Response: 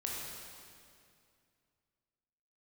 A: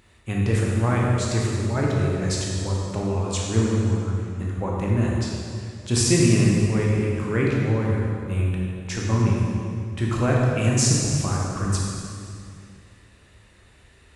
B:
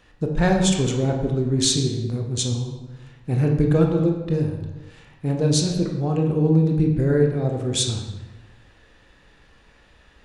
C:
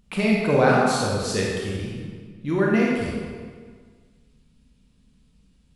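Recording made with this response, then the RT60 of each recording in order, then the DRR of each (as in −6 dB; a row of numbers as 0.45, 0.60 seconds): A; 2.3, 1.2, 1.7 seconds; −3.5, 1.0, −4.0 decibels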